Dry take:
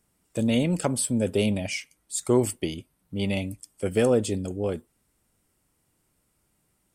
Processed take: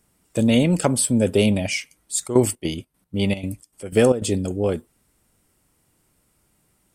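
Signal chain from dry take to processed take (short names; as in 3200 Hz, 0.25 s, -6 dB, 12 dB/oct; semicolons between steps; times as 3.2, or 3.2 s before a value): 2.26–4.36 step gate "xx.xx.x." 153 bpm -12 dB; gain +6 dB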